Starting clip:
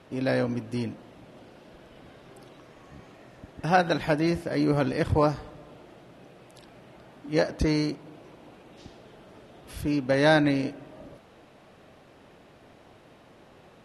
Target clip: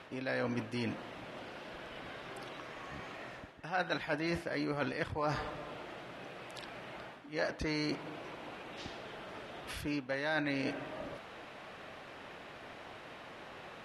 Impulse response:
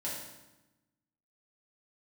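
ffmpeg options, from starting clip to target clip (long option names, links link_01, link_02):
-af "equalizer=frequency=1900:width=0.35:gain=12,areverse,acompressor=threshold=-31dB:ratio=5,areverse,volume=-2.5dB"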